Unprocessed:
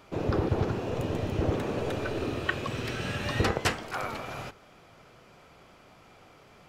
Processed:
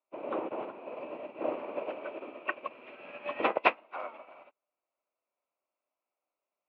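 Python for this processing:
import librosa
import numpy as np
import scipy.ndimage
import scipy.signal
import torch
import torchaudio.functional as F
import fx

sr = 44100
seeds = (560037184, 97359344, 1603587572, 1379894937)

y = fx.freq_compress(x, sr, knee_hz=2100.0, ratio=1.5)
y = fx.cabinet(y, sr, low_hz=280.0, low_slope=24, high_hz=2700.0, hz=(420.0, 600.0, 1000.0, 1700.0, 2600.0), db=(-5, 9, 7, -8, 9))
y = fx.upward_expand(y, sr, threshold_db=-50.0, expansion=2.5)
y = y * 10.0 ** (3.5 / 20.0)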